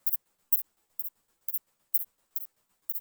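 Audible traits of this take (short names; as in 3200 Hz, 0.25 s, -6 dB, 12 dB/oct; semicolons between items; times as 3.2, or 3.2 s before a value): a quantiser's noise floor 12-bit, dither none; tremolo saw down 7.8 Hz, depth 75%; a shimmering, thickened sound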